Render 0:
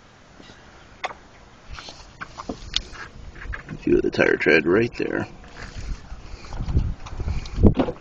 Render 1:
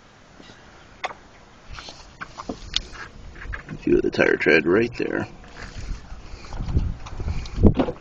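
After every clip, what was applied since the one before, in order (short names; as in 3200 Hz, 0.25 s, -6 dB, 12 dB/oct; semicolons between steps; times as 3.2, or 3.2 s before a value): notches 60/120 Hz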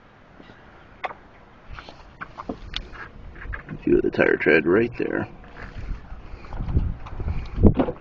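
LPF 2500 Hz 12 dB/oct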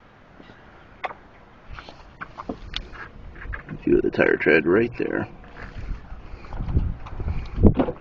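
gate with hold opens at -43 dBFS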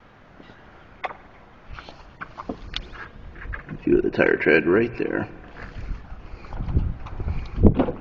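spring tank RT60 1.5 s, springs 48 ms, chirp 45 ms, DRR 18.5 dB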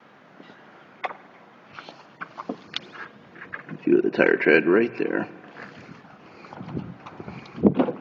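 HPF 160 Hz 24 dB/oct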